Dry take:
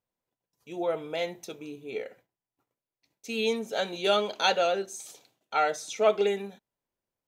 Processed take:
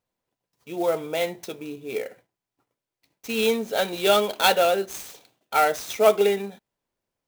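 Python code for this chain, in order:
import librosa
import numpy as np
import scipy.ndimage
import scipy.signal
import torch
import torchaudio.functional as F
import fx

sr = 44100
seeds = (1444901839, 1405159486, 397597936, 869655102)

y = fx.clock_jitter(x, sr, seeds[0], jitter_ms=0.023)
y = y * 10.0 ** (5.5 / 20.0)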